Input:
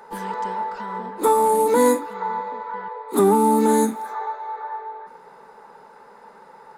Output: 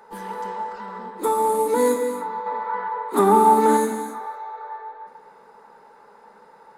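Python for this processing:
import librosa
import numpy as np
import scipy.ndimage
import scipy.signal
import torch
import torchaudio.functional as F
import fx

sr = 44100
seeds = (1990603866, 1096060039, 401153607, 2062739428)

y = fx.peak_eq(x, sr, hz=1200.0, db=9.0, octaves=2.7, at=(2.46, 3.77))
y = fx.rev_gated(y, sr, seeds[0], gate_ms=310, shape='flat', drr_db=5.0)
y = y * 10.0 ** (-4.5 / 20.0)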